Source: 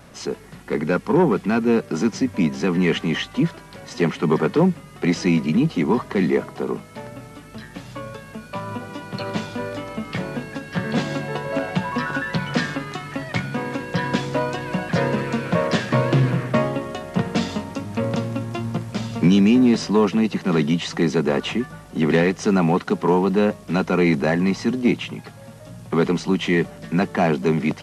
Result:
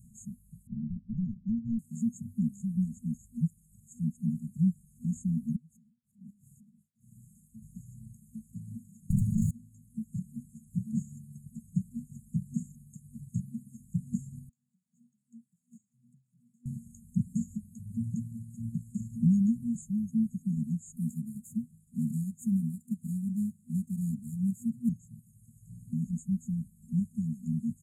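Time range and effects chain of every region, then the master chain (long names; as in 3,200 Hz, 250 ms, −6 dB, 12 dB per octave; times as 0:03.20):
0:00.67–0:01.79: linear delta modulator 16 kbit/s, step −32 dBFS + highs frequency-modulated by the lows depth 0.9 ms
0:05.56–0:07.62: low-shelf EQ 130 Hz −9 dB + downward compressor 12 to 1, threshold −31 dBFS + tremolo along a rectified sine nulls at 1.1 Hz
0:09.10–0:09.51: lower of the sound and its delayed copy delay 0.72 ms + bass and treble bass +9 dB, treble 0 dB + envelope flattener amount 100%
0:14.49–0:16.66: gain into a clipping stage and back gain 19.5 dB + spectral tilt +3 dB per octave + formant filter swept between two vowels a-i 2.8 Hz
0:20.96–0:24.89: variable-slope delta modulation 64 kbit/s + high-pass filter 100 Hz + notch filter 6,600 Hz, Q 27
whole clip: reverb reduction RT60 1.6 s; brick-wall band-stop 240–6,500 Hz; level −6 dB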